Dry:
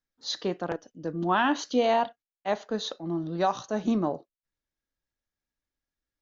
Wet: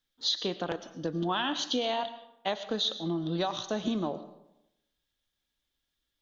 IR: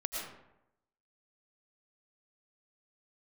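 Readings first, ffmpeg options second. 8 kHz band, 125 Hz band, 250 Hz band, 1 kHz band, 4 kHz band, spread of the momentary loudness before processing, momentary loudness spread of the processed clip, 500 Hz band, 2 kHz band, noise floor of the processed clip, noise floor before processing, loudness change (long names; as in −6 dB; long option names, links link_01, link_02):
can't be measured, −1.0 dB, −3.5 dB, −6.5 dB, +5.5 dB, 11 LU, 7 LU, −5.0 dB, −5.5 dB, −83 dBFS, below −85 dBFS, −3.0 dB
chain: -filter_complex "[0:a]equalizer=frequency=3400:width_type=o:width=0.53:gain=14.5,acompressor=threshold=-31dB:ratio=6,asplit=2[link_01][link_02];[1:a]atrim=start_sample=2205,highshelf=frequency=4200:gain=9.5[link_03];[link_02][link_03]afir=irnorm=-1:irlink=0,volume=-14dB[link_04];[link_01][link_04]amix=inputs=2:normalize=0,volume=2dB"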